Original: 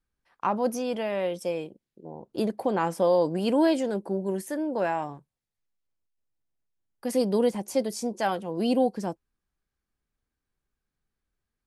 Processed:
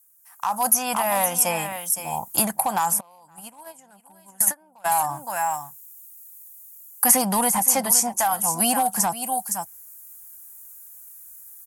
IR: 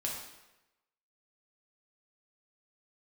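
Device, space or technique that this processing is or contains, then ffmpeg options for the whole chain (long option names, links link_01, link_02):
FM broadcast chain: -filter_complex "[0:a]highpass=49,firequalizer=gain_entry='entry(100,0);entry(420,-22);entry(770,8);entry(4000,-10);entry(6700,7)':delay=0.05:min_phase=1,aecho=1:1:515:0.2,dynaudnorm=framelen=140:gausssize=5:maxgain=14dB,acrossover=split=1400|3800[link_01][link_02][link_03];[link_01]acompressor=threshold=-14dB:ratio=4[link_04];[link_02]acompressor=threshold=-36dB:ratio=4[link_05];[link_03]acompressor=threshold=-50dB:ratio=4[link_06];[link_04][link_05][link_06]amix=inputs=3:normalize=0,aemphasis=mode=production:type=75fm,alimiter=limit=-13dB:level=0:latency=1:release=192,asoftclip=type=hard:threshold=-15.5dB,lowpass=frequency=15000:width=0.5412,lowpass=frequency=15000:width=1.3066,aemphasis=mode=production:type=75fm,asplit=3[link_07][link_08][link_09];[link_07]afade=type=out:start_time=2.99:duration=0.02[link_10];[link_08]agate=range=-29dB:threshold=-16dB:ratio=16:detection=peak,afade=type=in:start_time=2.99:duration=0.02,afade=type=out:start_time=4.84:duration=0.02[link_11];[link_09]afade=type=in:start_time=4.84:duration=0.02[link_12];[link_10][link_11][link_12]amix=inputs=3:normalize=0"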